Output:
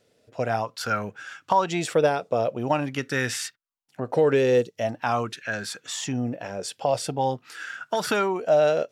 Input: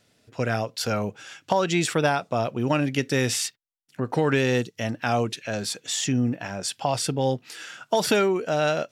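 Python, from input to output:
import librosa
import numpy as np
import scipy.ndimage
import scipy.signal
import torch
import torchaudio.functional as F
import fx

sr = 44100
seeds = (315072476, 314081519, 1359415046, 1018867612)

y = fx.bell_lfo(x, sr, hz=0.45, low_hz=460.0, high_hz=1600.0, db=13)
y = y * librosa.db_to_amplitude(-5.0)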